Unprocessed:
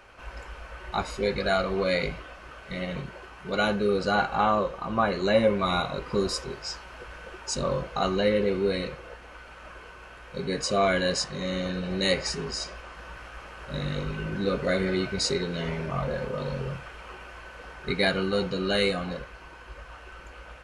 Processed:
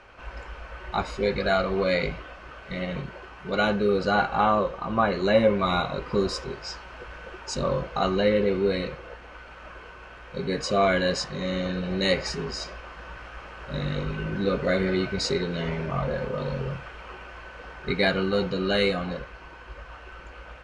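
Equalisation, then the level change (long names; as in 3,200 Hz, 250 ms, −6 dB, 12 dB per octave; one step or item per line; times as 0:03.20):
high-frequency loss of the air 79 metres
+2.0 dB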